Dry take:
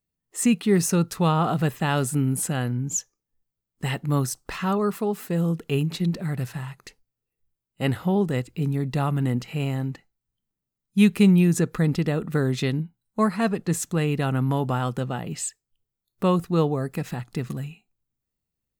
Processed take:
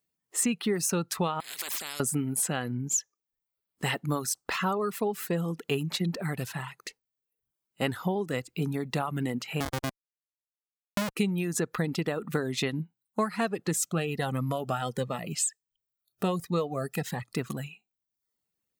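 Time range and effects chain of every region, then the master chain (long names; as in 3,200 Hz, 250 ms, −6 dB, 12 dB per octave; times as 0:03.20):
0:01.40–0:02.00: low-shelf EQ 120 Hz +8.5 dB + downward compressor 12 to 1, threshold −25 dBFS + every bin compressed towards the loudest bin 10 to 1
0:09.60–0:11.17: bass and treble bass +3 dB, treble −9 dB + comparator with hysteresis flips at −21 dBFS
0:13.78–0:17.37: comb filter 1.6 ms, depth 34% + phaser whose notches keep moving one way rising 1.4 Hz
whole clip: high-pass filter 330 Hz 6 dB per octave; downward compressor 6 to 1, threshold −28 dBFS; reverb reduction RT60 0.69 s; level +4 dB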